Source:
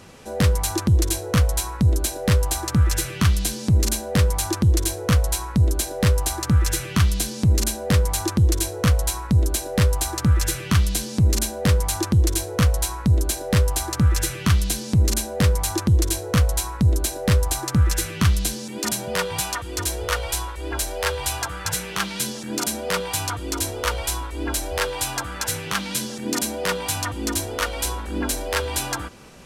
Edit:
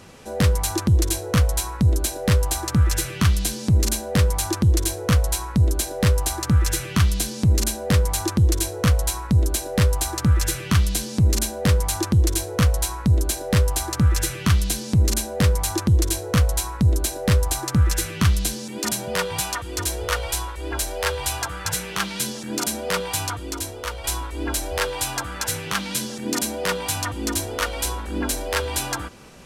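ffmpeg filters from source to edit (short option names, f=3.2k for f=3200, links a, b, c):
-filter_complex "[0:a]asplit=2[a][b];[a]atrim=end=24.04,asetpts=PTS-STARTPTS,afade=t=out:st=23.23:d=0.81:c=qua:silence=0.473151[c];[b]atrim=start=24.04,asetpts=PTS-STARTPTS,afade=t=in:d=0.004:c=hsin:silence=0.473151[d];[c][d]concat=n=2:v=0:a=1"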